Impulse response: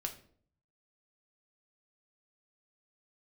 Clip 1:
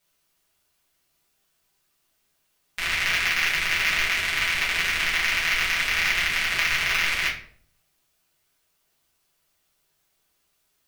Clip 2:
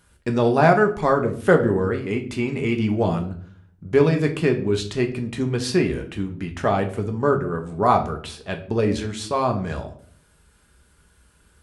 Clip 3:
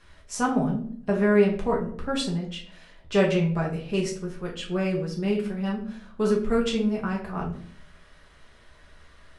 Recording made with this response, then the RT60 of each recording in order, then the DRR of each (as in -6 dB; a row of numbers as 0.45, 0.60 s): 2; 0.55, 0.55, 0.55 s; -8.0, 3.5, -3.0 dB